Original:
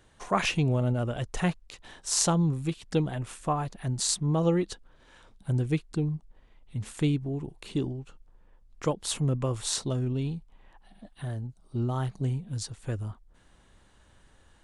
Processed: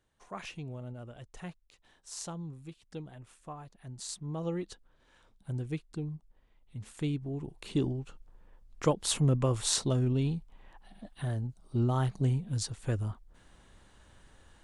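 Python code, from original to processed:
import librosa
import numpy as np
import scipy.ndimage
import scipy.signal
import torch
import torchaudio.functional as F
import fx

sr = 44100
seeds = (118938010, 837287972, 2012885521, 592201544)

y = fx.gain(x, sr, db=fx.line((3.72, -16.0), (4.67, -8.5), (6.89, -8.5), (7.9, 1.0)))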